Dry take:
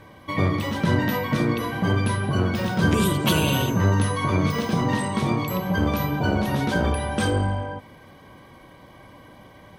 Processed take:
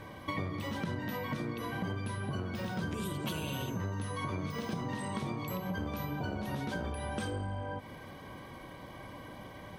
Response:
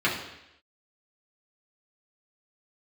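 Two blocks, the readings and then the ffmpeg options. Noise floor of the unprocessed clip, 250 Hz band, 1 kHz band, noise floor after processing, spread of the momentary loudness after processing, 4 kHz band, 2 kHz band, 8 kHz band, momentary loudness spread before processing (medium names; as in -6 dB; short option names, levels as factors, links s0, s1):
-48 dBFS, -14.0 dB, -13.0 dB, -48 dBFS, 11 LU, -14.0 dB, -13.5 dB, -14.5 dB, 4 LU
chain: -af "acompressor=threshold=0.0224:ratio=12"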